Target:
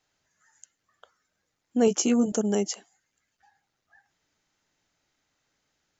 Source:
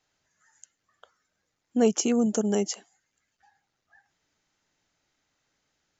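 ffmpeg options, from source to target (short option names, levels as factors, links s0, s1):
-filter_complex "[0:a]asettb=1/sr,asplit=3[s0][s1][s2];[s0]atrim=end=1.864[s3];[s1]atrim=start=1.86:end=2.32,asetpts=PTS-STARTPTS,afade=t=in:d=0.004:c=qsin,afade=t=out:st=0.456:d=0.004:c=qsin,asplit=2[s4][s5];[s5]adelay=16,volume=0.562[s6];[s4][s6]amix=inputs=2:normalize=0,atrim=end_sample=20286[s7];[s2]atrim=start=2.316[s8];[s3][s7]acrossfade=d=0.004:c1=hsin:c2=qsin[s9];[s9][s8]acrossfade=d=0.004:c1=qsin:c2=hsin"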